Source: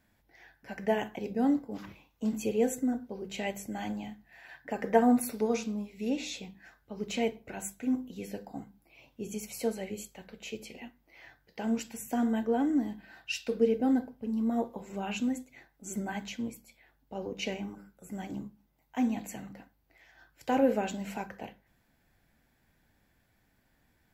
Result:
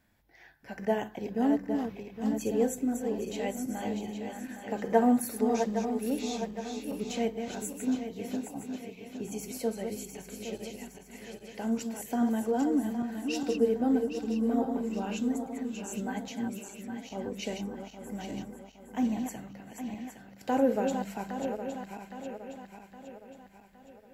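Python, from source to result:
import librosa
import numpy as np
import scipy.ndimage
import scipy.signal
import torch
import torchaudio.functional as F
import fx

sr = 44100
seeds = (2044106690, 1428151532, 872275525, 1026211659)

y = fx.reverse_delay_fb(x, sr, ms=407, feedback_pct=68, wet_db=-6.5)
y = fx.dynamic_eq(y, sr, hz=2400.0, q=1.7, threshold_db=-52.0, ratio=4.0, max_db=-6)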